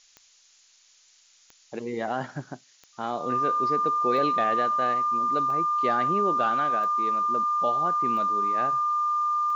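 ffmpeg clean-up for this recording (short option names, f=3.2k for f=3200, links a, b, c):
-af "adeclick=t=4,bandreject=f=1.2k:w=30,afftdn=nr=13:nf=-59"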